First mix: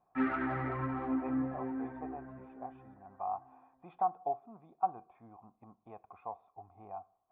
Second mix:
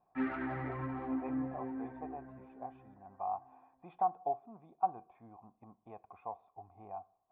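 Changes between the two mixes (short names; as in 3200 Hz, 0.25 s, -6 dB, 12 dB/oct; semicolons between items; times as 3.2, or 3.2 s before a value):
background -3.0 dB; master: add bell 1300 Hz -5.5 dB 0.3 oct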